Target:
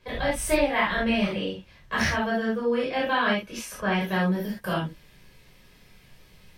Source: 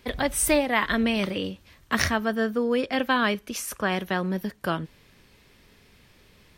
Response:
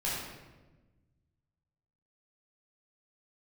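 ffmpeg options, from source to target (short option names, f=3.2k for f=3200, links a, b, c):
-filter_complex "[0:a]asetnsamples=n=441:p=0,asendcmd='4.01 highshelf g 5',highshelf=f=7.6k:g=-9.5[a];[1:a]atrim=start_sample=2205,atrim=end_sample=3969[b];[a][b]afir=irnorm=-1:irlink=0,volume=-4.5dB"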